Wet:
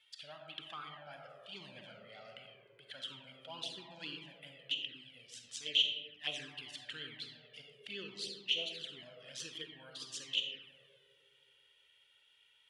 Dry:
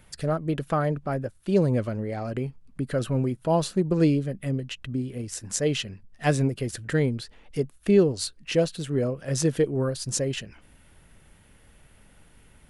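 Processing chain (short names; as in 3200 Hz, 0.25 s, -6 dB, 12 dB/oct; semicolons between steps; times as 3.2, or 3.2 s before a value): band-pass 3200 Hz, Q 6.4; on a send at -1.5 dB: reverb RT60 2.5 s, pre-delay 5 ms; on the sum: envelope flanger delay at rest 2.3 ms, full sweep at -40 dBFS; gain +6.5 dB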